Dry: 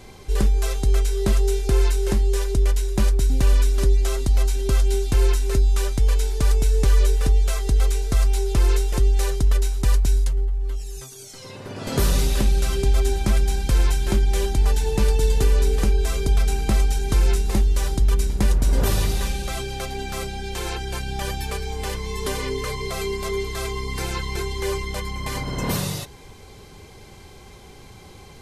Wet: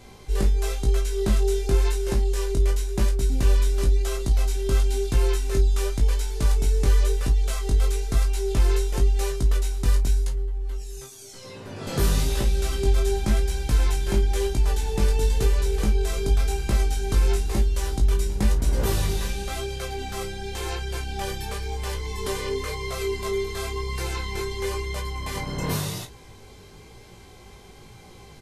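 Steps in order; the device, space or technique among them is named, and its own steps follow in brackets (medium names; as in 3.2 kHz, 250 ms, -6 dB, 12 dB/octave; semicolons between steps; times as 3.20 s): double-tracked vocal (doubling 33 ms -11 dB; chorus 0.96 Hz, delay 17 ms, depth 3.9 ms)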